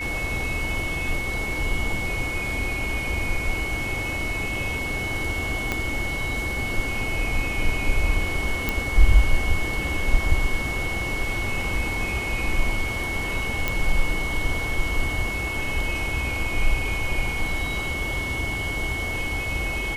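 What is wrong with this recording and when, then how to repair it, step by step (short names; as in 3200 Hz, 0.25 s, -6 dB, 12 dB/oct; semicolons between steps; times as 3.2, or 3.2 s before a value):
tone 2200 Hz -28 dBFS
5.72 pop -10 dBFS
8.69 pop
13.68 pop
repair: de-click; notch 2200 Hz, Q 30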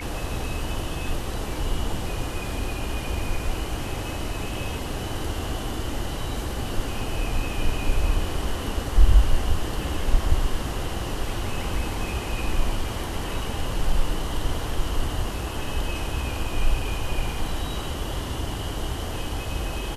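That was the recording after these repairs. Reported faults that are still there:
5.72 pop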